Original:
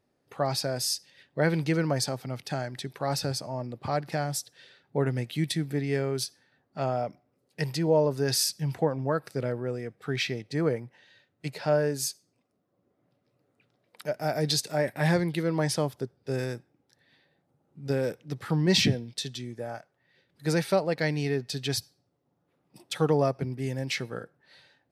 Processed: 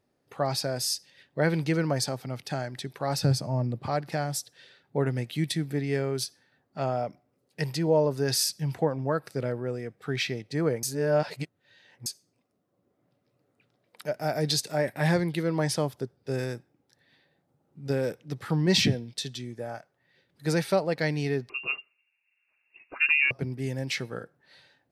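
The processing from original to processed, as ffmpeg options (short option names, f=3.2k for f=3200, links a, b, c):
-filter_complex "[0:a]asettb=1/sr,asplit=3[a][b][c];[a]atrim=end=3.234[d];[b]atrim=start=3.23:end=3.84,asetpts=PTS-STARTPTS,afade=t=in:d=0.004:c=qsin,afade=t=out:st=0.606:d=0.004:c=qsin,equalizer=f=130:t=o:w=2.1:g=10[e];[c]atrim=start=3.836[f];[d][e]acrossfade=d=0.004:c1=hsin:c2=qsin[g];[g][f]acrossfade=d=0.004:c1=qsin:c2=hsin,asettb=1/sr,asplit=3[h][i][j];[h]atrim=end=21.494[k];[i]atrim=start=21.49:end=23.31,asetpts=PTS-STARTPTS,afade=t=in:d=0.004:c=qsin,afade=t=out:st=1.816:d=0.004:c=qsin,lowpass=f=2.5k:t=q:w=0.5098,lowpass=f=2.5k:t=q:w=0.6013,lowpass=f=2.5k:t=q:w=0.9,lowpass=f=2.5k:t=q:w=2.563,afreqshift=-2900[l];[j]atrim=start=23.306[m];[k][l]acrossfade=d=0.004:c1=hsin:c2=qsin[n];[n][m]acrossfade=d=0.004:c1=qsin:c2=hsin,asplit=3[o][p][q];[o]atrim=end=10.832[r];[p]atrim=start=10.828:end=12.062,asetpts=PTS-STARTPTS,areverse[s];[q]atrim=start=12.058[t];[r][s]acrossfade=d=0.004:c1=hsin:c2=hsin[u];[u][t]acrossfade=d=0.004:c1=hsin:c2=hsin"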